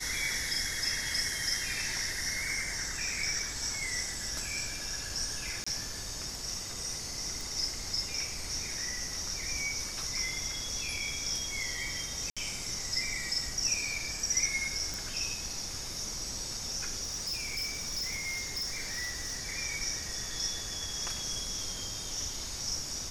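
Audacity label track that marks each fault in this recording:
5.640000	5.670000	drop-out 25 ms
7.410000	7.410000	click
12.300000	12.370000	drop-out 66 ms
14.940000	14.940000	click
17.030000	19.430000	clipping −31 dBFS

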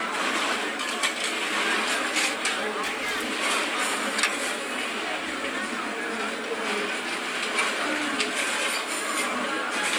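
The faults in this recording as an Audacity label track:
2.820000	3.290000	clipping −24.5 dBFS

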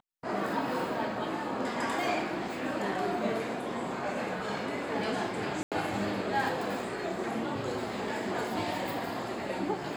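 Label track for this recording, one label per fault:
5.630000	5.720000	drop-out 87 ms

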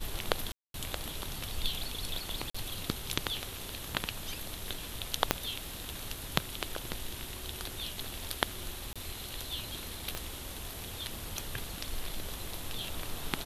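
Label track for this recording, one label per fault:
0.520000	0.740000	drop-out 222 ms
2.500000	2.540000	drop-out 45 ms
5.310000	5.310000	click −6 dBFS
8.930000	8.960000	drop-out 26 ms
10.150000	10.150000	click −19 dBFS

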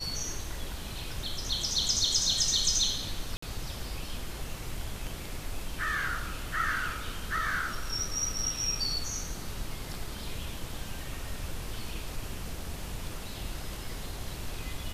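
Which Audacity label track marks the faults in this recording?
3.370000	3.420000	drop-out 54 ms

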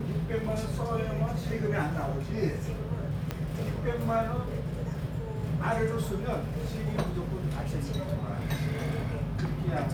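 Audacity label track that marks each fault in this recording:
3.310000	3.310000	click −17 dBFS

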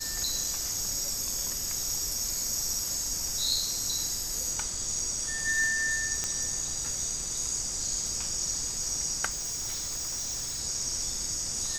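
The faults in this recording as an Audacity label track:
6.240000	6.240000	click −14 dBFS
9.290000	10.600000	clipping −30.5 dBFS

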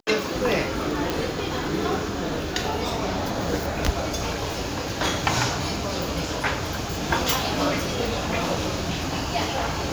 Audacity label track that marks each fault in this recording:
1.100000	1.100000	click

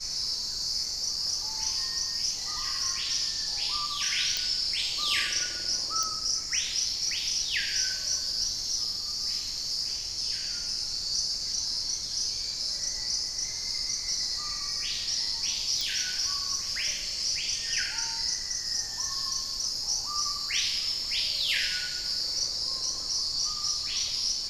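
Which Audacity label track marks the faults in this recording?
4.370000	4.370000	click −14 dBFS
6.030000	6.030000	click
15.810000	15.810000	click

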